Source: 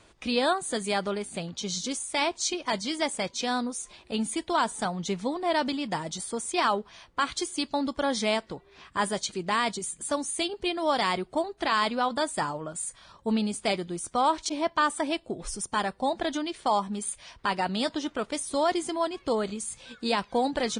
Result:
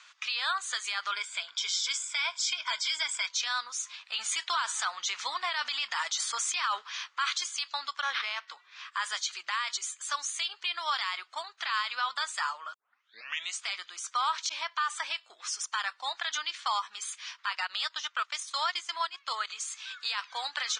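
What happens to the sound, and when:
0:01.12–0:03.27: EQ curve with evenly spaced ripples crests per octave 1.7, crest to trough 13 dB
0:04.14–0:07.38: clip gain +6 dB
0:08.01–0:08.48: linearly interpolated sample-rate reduction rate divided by 6×
0:12.74: tape start 0.86 s
0:17.55–0:19.50: transient designer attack +2 dB, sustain −10 dB
whole clip: Chebyshev band-pass filter 1,200–6,700 Hz, order 3; brickwall limiter −27.5 dBFS; level +7 dB

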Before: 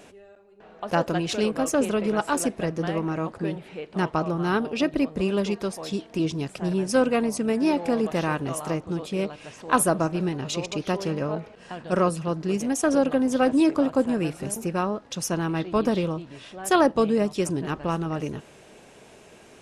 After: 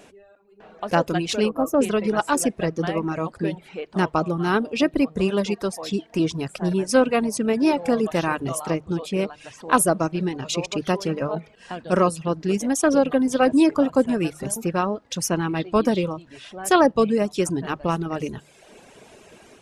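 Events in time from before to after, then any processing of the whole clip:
0:01.49–0:01.80: gain on a spectral selection 1,400–11,000 Hz −14 dB
whole clip: mains-hum notches 50/100/150 Hz; reverb reduction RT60 0.79 s; automatic gain control gain up to 4 dB

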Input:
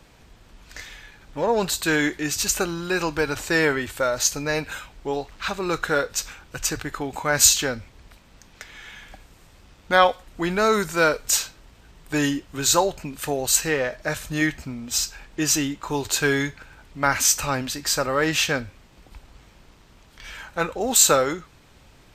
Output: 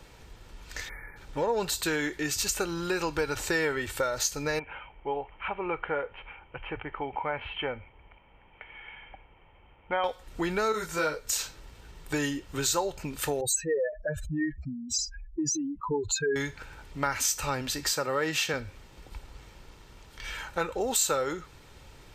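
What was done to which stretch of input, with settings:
0:00.89–0:01.17: time-frequency box erased 2,400–9,300 Hz
0:04.59–0:10.04: Chebyshev low-pass with heavy ripple 3,200 Hz, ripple 9 dB
0:10.72–0:11.39: micro pitch shift up and down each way 27 cents
0:13.41–0:16.36: expanding power law on the bin magnitudes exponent 3.3
0:17.92–0:18.54: high-pass filter 110 Hz 24 dB per octave
whole clip: downward compressor 3 to 1, threshold −28 dBFS; comb filter 2.2 ms, depth 31%

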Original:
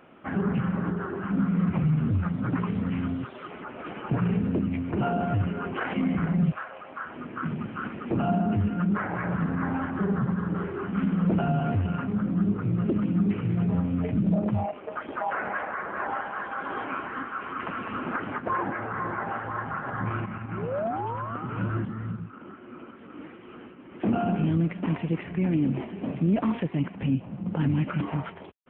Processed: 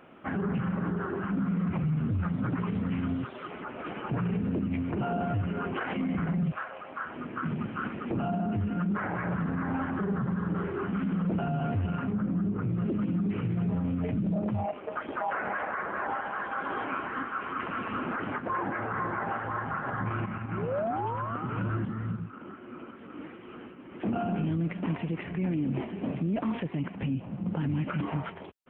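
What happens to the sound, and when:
0:12.11–0:12.69: high-frequency loss of the air 230 metres
whole clip: brickwall limiter −22.5 dBFS

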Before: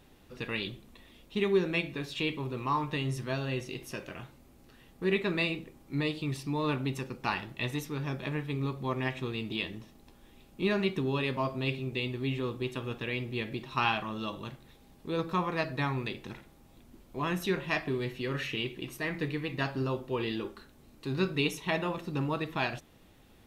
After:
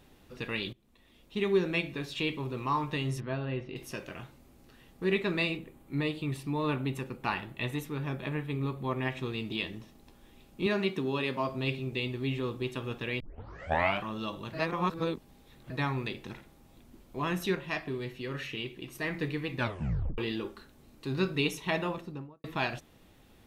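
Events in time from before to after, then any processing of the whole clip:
0:00.73–0:01.54: fade in, from −21.5 dB
0:03.20–0:03.76: high-frequency loss of the air 370 metres
0:05.57–0:09.12: parametric band 5,400 Hz −9 dB 0.67 octaves
0:10.66–0:11.49: high-pass filter 160 Hz
0:13.20: tape start 0.83 s
0:14.53–0:15.70: reverse
0:17.55–0:18.95: clip gain −3.5 dB
0:19.56: tape stop 0.62 s
0:21.82–0:22.44: fade out and dull

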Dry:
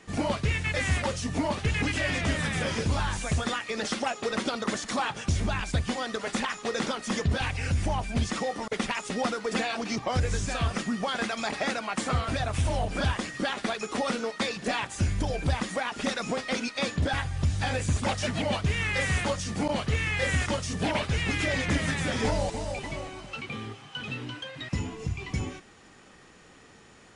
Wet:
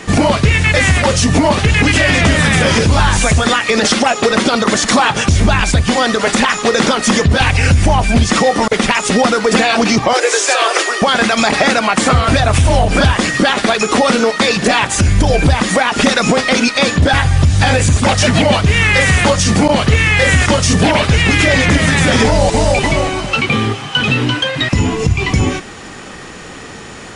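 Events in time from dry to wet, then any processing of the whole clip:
0:10.13–0:11.02: Butterworth high-pass 340 Hz 72 dB per octave
whole clip: downward compressor, threshold −29 dBFS; boost into a limiter +23.5 dB; level −1 dB

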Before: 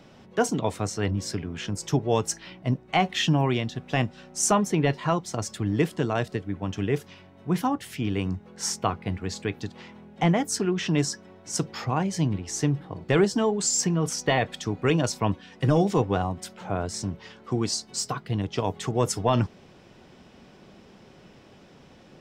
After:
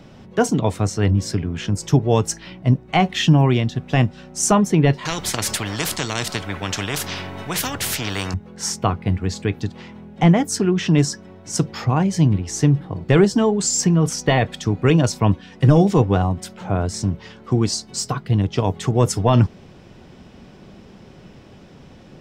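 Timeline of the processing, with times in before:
0:05.05–0:08.34: every bin compressed towards the loudest bin 4 to 1
whole clip: low-shelf EQ 210 Hz +8.5 dB; level +4 dB

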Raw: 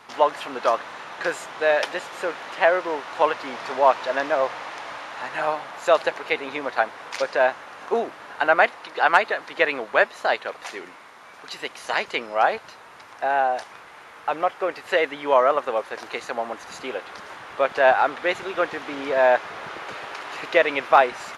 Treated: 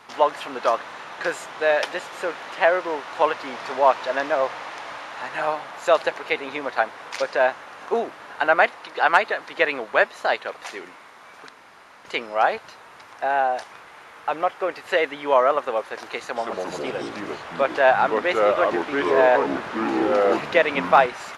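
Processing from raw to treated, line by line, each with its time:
0:11.49–0:12.05: fill with room tone
0:16.20–0:21.06: delay with pitch and tempo change per echo 152 ms, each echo −4 semitones, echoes 3

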